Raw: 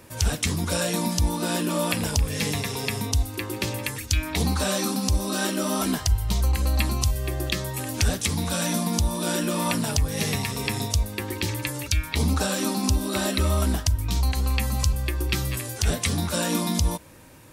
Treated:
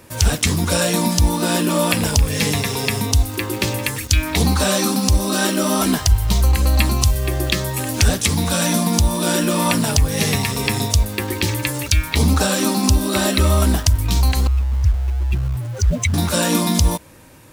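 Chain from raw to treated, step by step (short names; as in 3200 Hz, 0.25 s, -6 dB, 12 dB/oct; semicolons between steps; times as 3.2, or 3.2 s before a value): 14.47–16.14 spectral contrast raised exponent 2.9; in parallel at -5.5 dB: requantised 6-bit, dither none; on the sum: gain +3.5 dB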